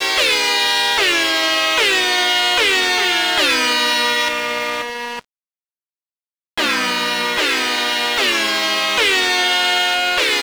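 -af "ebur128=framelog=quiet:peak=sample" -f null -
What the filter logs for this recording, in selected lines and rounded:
Integrated loudness:
  I:         -14.8 LUFS
  Threshold: -25.1 LUFS
Loudness range:
  LRA:         6.5 LU
  Threshold: -36.0 LUFS
  LRA low:   -20.3 LUFS
  LRA high:  -13.8 LUFS
Sample peak:
  Peak:       -8.6 dBFS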